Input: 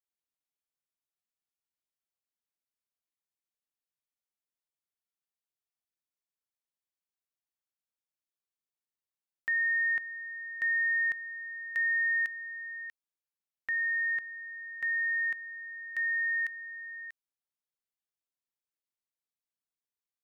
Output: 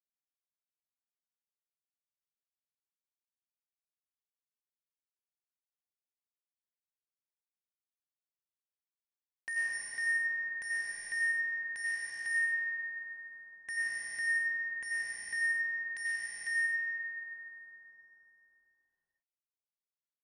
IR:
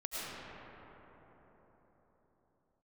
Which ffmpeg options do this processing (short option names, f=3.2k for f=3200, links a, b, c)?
-filter_complex "[0:a]asettb=1/sr,asplit=3[a][b][c];[a]atrim=end=9.734[d];[b]atrim=start=9.73:end=12.1,asetpts=PTS-STARTPTS,afade=t=in:d=0.004:c=qsin,afade=t=out:st=2.366:d=0.004:c=qsin,highshelf=f=2k:g=-3.5[e];[c]atrim=start=12.096[f];[d][e]acrossfade=d=0.004:c1=hsin:c2=qsin[g];[g][f]acrossfade=d=0.004:c1=qsin:c2=hsin,acompressor=threshold=-41dB:ratio=1.5,acrusher=bits=5:mix=0:aa=0.000001[h];[1:a]atrim=start_sample=2205[i];[h][i]afir=irnorm=-1:irlink=0,aresample=22050,aresample=44100,asuperstop=centerf=1300:order=12:qfactor=5.5"